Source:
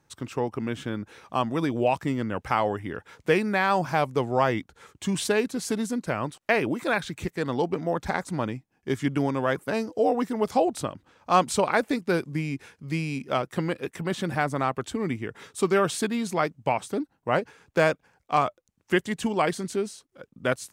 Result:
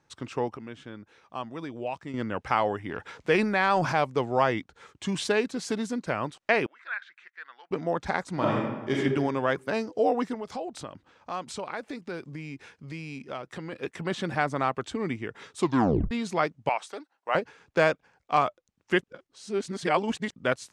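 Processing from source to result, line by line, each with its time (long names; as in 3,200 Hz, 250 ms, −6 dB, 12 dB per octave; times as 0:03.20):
0:00.57–0:02.14: clip gain −9 dB
0:02.89–0:04.00: transient designer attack −1 dB, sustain +8 dB
0:06.66–0:07.71: four-pole ladder band-pass 1,800 Hz, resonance 55%
0:08.33–0:08.97: thrown reverb, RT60 1.2 s, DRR −5 dB
0:10.34–0:13.73: downward compressor 2.5 to 1, threshold −35 dBFS
0:15.60: tape stop 0.51 s
0:16.69–0:17.35: high-pass filter 660 Hz
0:19.02–0:20.34: reverse
whole clip: low-pass filter 6,300 Hz 12 dB per octave; low-shelf EQ 280 Hz −4.5 dB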